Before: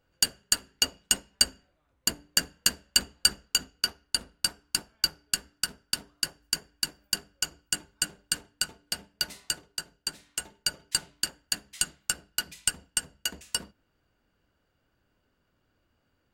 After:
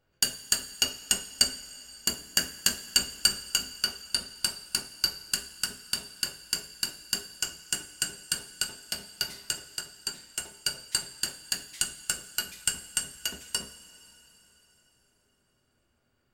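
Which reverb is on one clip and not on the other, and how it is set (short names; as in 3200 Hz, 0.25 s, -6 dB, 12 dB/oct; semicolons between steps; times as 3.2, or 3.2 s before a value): two-slope reverb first 0.34 s, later 3.9 s, from -18 dB, DRR 5.5 dB; gain -1.5 dB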